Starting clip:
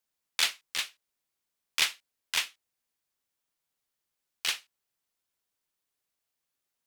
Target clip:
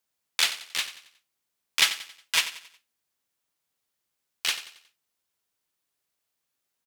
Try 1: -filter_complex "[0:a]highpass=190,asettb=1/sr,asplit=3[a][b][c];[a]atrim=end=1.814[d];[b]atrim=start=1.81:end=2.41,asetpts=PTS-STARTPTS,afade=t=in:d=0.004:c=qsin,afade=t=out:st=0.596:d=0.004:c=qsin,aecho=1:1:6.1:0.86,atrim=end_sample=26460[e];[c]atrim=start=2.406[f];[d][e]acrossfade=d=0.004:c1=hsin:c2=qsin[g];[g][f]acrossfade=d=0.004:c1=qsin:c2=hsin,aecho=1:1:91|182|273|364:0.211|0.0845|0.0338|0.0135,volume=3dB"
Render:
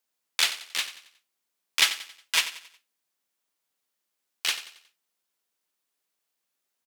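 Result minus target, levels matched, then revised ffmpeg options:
125 Hz band -6.0 dB
-filter_complex "[0:a]highpass=50,asettb=1/sr,asplit=3[a][b][c];[a]atrim=end=1.814[d];[b]atrim=start=1.81:end=2.41,asetpts=PTS-STARTPTS,afade=t=in:d=0.004:c=qsin,afade=t=out:st=0.596:d=0.004:c=qsin,aecho=1:1:6.1:0.86,atrim=end_sample=26460[e];[c]atrim=start=2.406[f];[d][e]acrossfade=d=0.004:c1=hsin:c2=qsin[g];[g][f]acrossfade=d=0.004:c1=qsin:c2=hsin,aecho=1:1:91|182|273|364:0.211|0.0845|0.0338|0.0135,volume=3dB"

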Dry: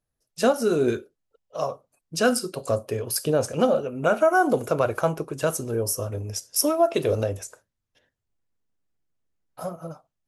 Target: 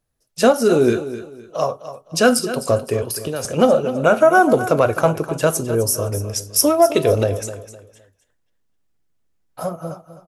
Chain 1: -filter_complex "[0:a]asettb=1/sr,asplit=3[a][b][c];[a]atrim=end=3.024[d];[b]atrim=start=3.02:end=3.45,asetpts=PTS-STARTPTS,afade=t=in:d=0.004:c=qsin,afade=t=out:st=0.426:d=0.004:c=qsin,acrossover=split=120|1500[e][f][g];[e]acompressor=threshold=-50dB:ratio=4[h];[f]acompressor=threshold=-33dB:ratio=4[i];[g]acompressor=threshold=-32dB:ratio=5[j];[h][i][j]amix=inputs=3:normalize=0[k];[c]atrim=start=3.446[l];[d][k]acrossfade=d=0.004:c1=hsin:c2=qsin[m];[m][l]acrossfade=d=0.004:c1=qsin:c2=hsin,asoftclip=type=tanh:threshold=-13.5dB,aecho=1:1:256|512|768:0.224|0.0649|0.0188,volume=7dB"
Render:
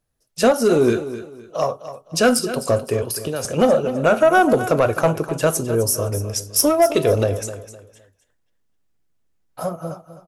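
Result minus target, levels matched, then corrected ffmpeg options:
soft clip: distortion +13 dB
-filter_complex "[0:a]asettb=1/sr,asplit=3[a][b][c];[a]atrim=end=3.024[d];[b]atrim=start=3.02:end=3.45,asetpts=PTS-STARTPTS,afade=t=in:d=0.004:c=qsin,afade=t=out:st=0.426:d=0.004:c=qsin,acrossover=split=120|1500[e][f][g];[e]acompressor=threshold=-50dB:ratio=4[h];[f]acompressor=threshold=-33dB:ratio=4[i];[g]acompressor=threshold=-32dB:ratio=5[j];[h][i][j]amix=inputs=3:normalize=0[k];[c]atrim=start=3.446[l];[d][k]acrossfade=d=0.004:c1=hsin:c2=qsin[m];[m][l]acrossfade=d=0.004:c1=qsin:c2=hsin,asoftclip=type=tanh:threshold=-5.5dB,aecho=1:1:256|512|768:0.224|0.0649|0.0188,volume=7dB"

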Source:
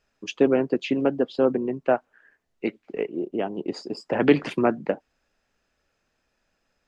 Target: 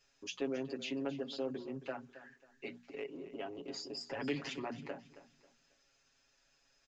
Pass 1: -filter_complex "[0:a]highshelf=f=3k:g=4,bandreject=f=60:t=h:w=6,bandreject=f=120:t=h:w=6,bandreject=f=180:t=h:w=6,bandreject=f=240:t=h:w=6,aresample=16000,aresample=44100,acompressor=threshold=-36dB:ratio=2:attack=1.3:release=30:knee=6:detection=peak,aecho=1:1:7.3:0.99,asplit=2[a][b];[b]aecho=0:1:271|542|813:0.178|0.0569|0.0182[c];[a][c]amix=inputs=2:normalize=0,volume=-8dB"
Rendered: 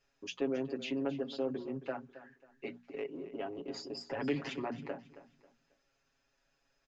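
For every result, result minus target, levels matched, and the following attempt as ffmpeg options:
8000 Hz band -6.0 dB; compressor: peak gain reduction -3.5 dB
-filter_complex "[0:a]highshelf=f=3k:g=15.5,bandreject=f=60:t=h:w=6,bandreject=f=120:t=h:w=6,bandreject=f=180:t=h:w=6,bandreject=f=240:t=h:w=6,aresample=16000,aresample=44100,acompressor=threshold=-36dB:ratio=2:attack=1.3:release=30:knee=6:detection=peak,aecho=1:1:7.3:0.99,asplit=2[a][b];[b]aecho=0:1:271|542|813:0.178|0.0569|0.0182[c];[a][c]amix=inputs=2:normalize=0,volume=-8dB"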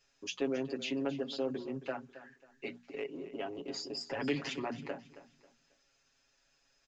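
compressor: peak gain reduction -3.5 dB
-filter_complex "[0:a]highshelf=f=3k:g=15.5,bandreject=f=60:t=h:w=6,bandreject=f=120:t=h:w=6,bandreject=f=180:t=h:w=6,bandreject=f=240:t=h:w=6,aresample=16000,aresample=44100,acompressor=threshold=-43dB:ratio=2:attack=1.3:release=30:knee=6:detection=peak,aecho=1:1:7.3:0.99,asplit=2[a][b];[b]aecho=0:1:271|542|813:0.178|0.0569|0.0182[c];[a][c]amix=inputs=2:normalize=0,volume=-8dB"

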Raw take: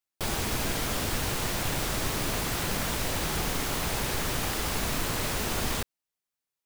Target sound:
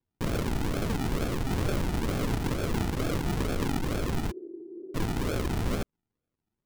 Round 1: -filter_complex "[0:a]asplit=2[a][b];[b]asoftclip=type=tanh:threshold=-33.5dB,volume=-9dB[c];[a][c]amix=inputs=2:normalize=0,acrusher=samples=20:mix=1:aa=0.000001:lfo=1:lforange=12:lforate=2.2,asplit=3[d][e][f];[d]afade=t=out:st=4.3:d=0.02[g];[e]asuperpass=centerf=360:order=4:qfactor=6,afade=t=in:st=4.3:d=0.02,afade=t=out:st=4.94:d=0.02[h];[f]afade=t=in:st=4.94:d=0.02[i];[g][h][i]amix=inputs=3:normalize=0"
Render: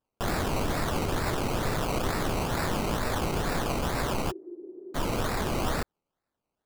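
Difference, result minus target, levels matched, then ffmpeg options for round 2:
decimation with a swept rate: distortion -4 dB
-filter_complex "[0:a]asplit=2[a][b];[b]asoftclip=type=tanh:threshold=-33.5dB,volume=-9dB[c];[a][c]amix=inputs=2:normalize=0,acrusher=samples=64:mix=1:aa=0.000001:lfo=1:lforange=38.4:lforate=2.2,asplit=3[d][e][f];[d]afade=t=out:st=4.3:d=0.02[g];[e]asuperpass=centerf=360:order=4:qfactor=6,afade=t=in:st=4.3:d=0.02,afade=t=out:st=4.94:d=0.02[h];[f]afade=t=in:st=4.94:d=0.02[i];[g][h][i]amix=inputs=3:normalize=0"

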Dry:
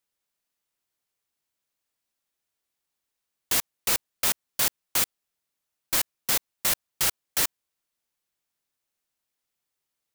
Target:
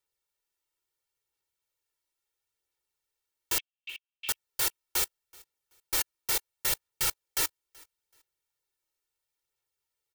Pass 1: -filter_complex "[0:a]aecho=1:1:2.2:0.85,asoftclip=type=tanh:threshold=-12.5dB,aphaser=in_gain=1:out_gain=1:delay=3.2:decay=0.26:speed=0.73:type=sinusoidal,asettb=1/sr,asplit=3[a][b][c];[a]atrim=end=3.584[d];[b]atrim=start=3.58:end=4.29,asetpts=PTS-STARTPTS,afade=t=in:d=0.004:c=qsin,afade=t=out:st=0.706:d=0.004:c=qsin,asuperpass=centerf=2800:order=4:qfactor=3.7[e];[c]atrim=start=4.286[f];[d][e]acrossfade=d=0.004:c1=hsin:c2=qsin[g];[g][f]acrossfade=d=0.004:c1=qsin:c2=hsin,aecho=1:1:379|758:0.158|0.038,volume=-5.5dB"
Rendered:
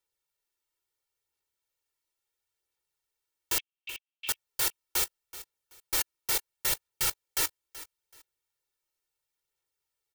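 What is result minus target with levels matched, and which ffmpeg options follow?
echo-to-direct +9.5 dB
-filter_complex "[0:a]aecho=1:1:2.2:0.85,asoftclip=type=tanh:threshold=-12.5dB,aphaser=in_gain=1:out_gain=1:delay=3.2:decay=0.26:speed=0.73:type=sinusoidal,asettb=1/sr,asplit=3[a][b][c];[a]atrim=end=3.584[d];[b]atrim=start=3.58:end=4.29,asetpts=PTS-STARTPTS,afade=t=in:d=0.004:c=qsin,afade=t=out:st=0.706:d=0.004:c=qsin,asuperpass=centerf=2800:order=4:qfactor=3.7[e];[c]atrim=start=4.286[f];[d][e]acrossfade=d=0.004:c1=hsin:c2=qsin[g];[g][f]acrossfade=d=0.004:c1=qsin:c2=hsin,aecho=1:1:379|758:0.0531|0.0127,volume=-5.5dB"

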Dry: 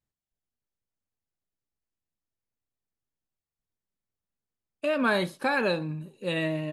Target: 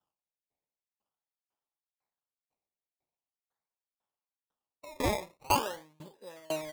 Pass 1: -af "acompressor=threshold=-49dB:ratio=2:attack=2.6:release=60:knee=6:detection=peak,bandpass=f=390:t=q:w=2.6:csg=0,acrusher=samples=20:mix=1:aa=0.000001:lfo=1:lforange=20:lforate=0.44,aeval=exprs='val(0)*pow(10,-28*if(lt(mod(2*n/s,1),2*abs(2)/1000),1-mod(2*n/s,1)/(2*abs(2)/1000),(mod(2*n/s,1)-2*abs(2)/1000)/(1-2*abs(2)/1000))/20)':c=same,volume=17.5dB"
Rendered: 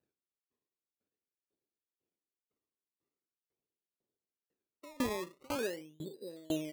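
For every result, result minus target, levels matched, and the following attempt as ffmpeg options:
1000 Hz band -6.0 dB; compressor: peak gain reduction +5 dB
-af "acompressor=threshold=-49dB:ratio=2:attack=2.6:release=60:knee=6:detection=peak,bandpass=f=900:t=q:w=2.6:csg=0,acrusher=samples=20:mix=1:aa=0.000001:lfo=1:lforange=20:lforate=0.44,aeval=exprs='val(0)*pow(10,-28*if(lt(mod(2*n/s,1),2*abs(2)/1000),1-mod(2*n/s,1)/(2*abs(2)/1000),(mod(2*n/s,1)-2*abs(2)/1000)/(1-2*abs(2)/1000))/20)':c=same,volume=17.5dB"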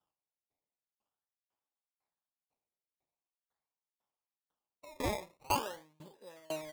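compressor: peak gain reduction +5 dB
-af "acompressor=threshold=-39dB:ratio=2:attack=2.6:release=60:knee=6:detection=peak,bandpass=f=900:t=q:w=2.6:csg=0,acrusher=samples=20:mix=1:aa=0.000001:lfo=1:lforange=20:lforate=0.44,aeval=exprs='val(0)*pow(10,-28*if(lt(mod(2*n/s,1),2*abs(2)/1000),1-mod(2*n/s,1)/(2*abs(2)/1000),(mod(2*n/s,1)-2*abs(2)/1000)/(1-2*abs(2)/1000))/20)':c=same,volume=17.5dB"

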